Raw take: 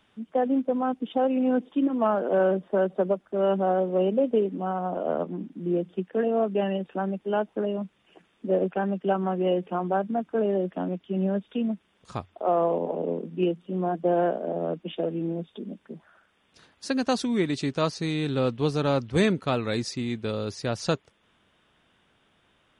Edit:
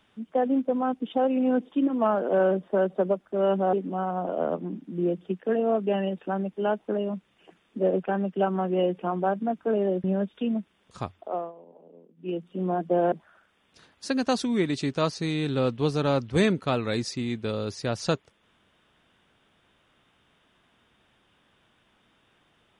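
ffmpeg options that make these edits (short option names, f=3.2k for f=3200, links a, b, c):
-filter_complex "[0:a]asplit=6[a][b][c][d][e][f];[a]atrim=end=3.732[g];[b]atrim=start=4.408:end=10.722[h];[c]atrim=start=11.178:end=12.66,asetpts=PTS-STARTPTS,afade=t=out:st=1.102:d=0.38:silence=0.0668344[i];[d]atrim=start=12.66:end=13.29,asetpts=PTS-STARTPTS,volume=-23.5dB[j];[e]atrim=start=13.29:end=14.262,asetpts=PTS-STARTPTS,afade=t=in:d=0.38:silence=0.0668344[k];[f]atrim=start=15.918[l];[g][h]acrossfade=d=0.004:c1=hsin:c2=hsin[m];[i][j][k]concat=n=3:v=0:a=1[n];[m][n]acrossfade=d=0.004:c1=hsin:c2=hsin[o];[o][l]acrossfade=d=0.004:c1=hsin:c2=hsin"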